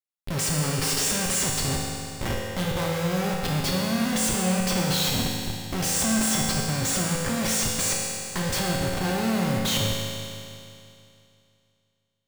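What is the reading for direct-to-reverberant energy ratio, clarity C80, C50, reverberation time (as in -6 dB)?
-3.0 dB, 1.0 dB, -0.5 dB, 2.6 s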